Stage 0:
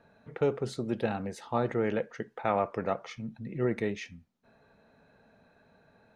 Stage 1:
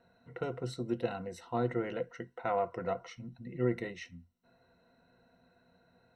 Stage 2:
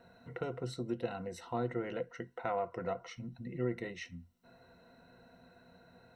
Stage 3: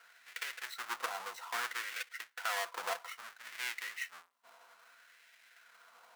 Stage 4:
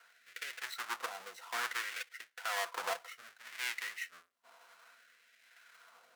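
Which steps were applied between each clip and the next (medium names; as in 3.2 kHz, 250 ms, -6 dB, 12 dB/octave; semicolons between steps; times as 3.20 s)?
rippled EQ curve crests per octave 2, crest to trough 14 dB; trim -6.5 dB
compression 1.5:1, threshold -56 dBFS, peak gain reduction 11.5 dB; trim +6.5 dB
square wave that keeps the level; LFO high-pass sine 0.61 Hz 970–2000 Hz; trim -2.5 dB
rotary cabinet horn 1 Hz; trim +2 dB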